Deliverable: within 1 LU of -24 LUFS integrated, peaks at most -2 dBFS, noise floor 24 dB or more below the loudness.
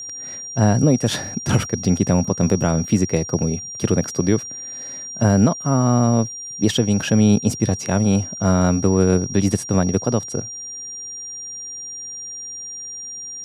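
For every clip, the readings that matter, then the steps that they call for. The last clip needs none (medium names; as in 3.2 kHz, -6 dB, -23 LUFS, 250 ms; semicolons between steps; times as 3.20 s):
steady tone 5.7 kHz; tone level -30 dBFS; loudness -20.0 LUFS; peak level -4.5 dBFS; loudness target -24.0 LUFS
-> band-stop 5.7 kHz, Q 30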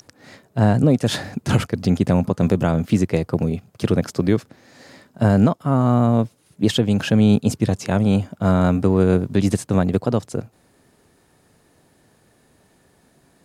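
steady tone not found; loudness -19.5 LUFS; peak level -5.0 dBFS; loudness target -24.0 LUFS
-> trim -4.5 dB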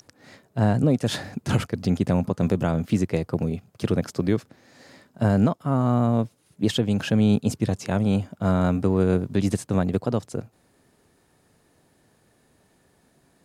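loudness -24.0 LUFS; peak level -9.5 dBFS; noise floor -64 dBFS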